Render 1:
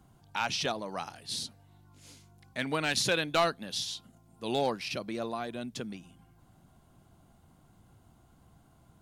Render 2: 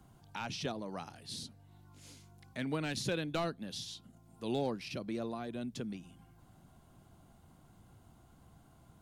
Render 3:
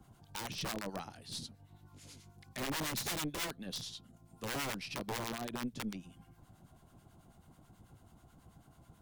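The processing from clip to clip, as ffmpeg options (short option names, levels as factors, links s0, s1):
-filter_complex "[0:a]acrossover=split=410[s0][s1];[s1]acompressor=threshold=0.00141:ratio=1.5[s2];[s0][s2]amix=inputs=2:normalize=0"
-filter_complex "[0:a]aeval=exprs='(mod(42.2*val(0)+1,2)-1)/42.2':c=same,acrossover=split=1000[s0][s1];[s0]aeval=exprs='val(0)*(1-0.7/2+0.7/2*cos(2*PI*9.2*n/s))':c=same[s2];[s1]aeval=exprs='val(0)*(1-0.7/2-0.7/2*cos(2*PI*9.2*n/s))':c=same[s3];[s2][s3]amix=inputs=2:normalize=0,aeval=exprs='0.0562*(cos(1*acos(clip(val(0)/0.0562,-1,1)))-cos(1*PI/2))+0.00316*(cos(6*acos(clip(val(0)/0.0562,-1,1)))-cos(6*PI/2))':c=same,volume=1.5"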